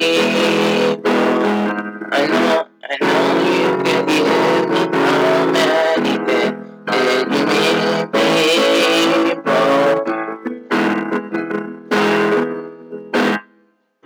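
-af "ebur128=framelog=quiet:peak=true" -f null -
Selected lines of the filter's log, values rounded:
Integrated loudness:
  I:         -15.7 LUFS
  Threshold: -25.9 LUFS
Loudness range:
  LRA:         4.2 LU
  Threshold: -35.7 LUFS
  LRA low:   -18.7 LUFS
  LRA high:  -14.5 LUFS
True peak:
  Peak:       -2.9 dBFS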